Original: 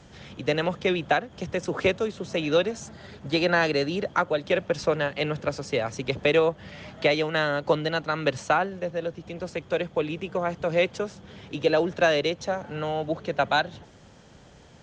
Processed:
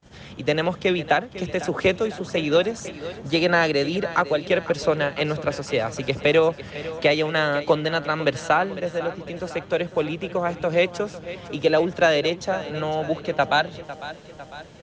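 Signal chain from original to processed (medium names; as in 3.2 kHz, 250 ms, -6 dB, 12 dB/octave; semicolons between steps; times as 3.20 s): feedback delay 502 ms, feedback 57%, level -15 dB; gate -50 dBFS, range -28 dB; trim +3 dB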